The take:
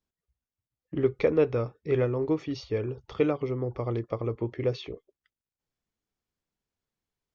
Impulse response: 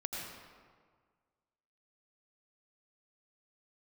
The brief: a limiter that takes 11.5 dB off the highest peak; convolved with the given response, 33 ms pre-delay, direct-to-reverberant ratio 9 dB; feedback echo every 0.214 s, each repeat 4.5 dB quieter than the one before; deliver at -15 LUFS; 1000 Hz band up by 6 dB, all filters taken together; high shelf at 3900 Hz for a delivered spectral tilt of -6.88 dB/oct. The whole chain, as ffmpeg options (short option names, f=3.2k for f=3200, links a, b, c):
-filter_complex "[0:a]equalizer=f=1k:t=o:g=8,highshelf=f=3.9k:g=-3.5,alimiter=limit=-21dB:level=0:latency=1,aecho=1:1:214|428|642|856|1070|1284|1498|1712|1926:0.596|0.357|0.214|0.129|0.0772|0.0463|0.0278|0.0167|0.01,asplit=2[a][b];[1:a]atrim=start_sample=2205,adelay=33[c];[b][c]afir=irnorm=-1:irlink=0,volume=-11dB[d];[a][d]amix=inputs=2:normalize=0,volume=14.5dB"